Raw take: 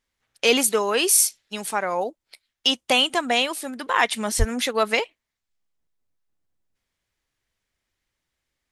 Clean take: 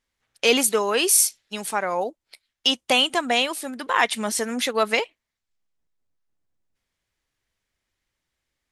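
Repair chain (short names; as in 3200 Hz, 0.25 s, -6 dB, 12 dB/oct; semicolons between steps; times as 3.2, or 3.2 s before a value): 4.38–4.5 HPF 140 Hz 24 dB/oct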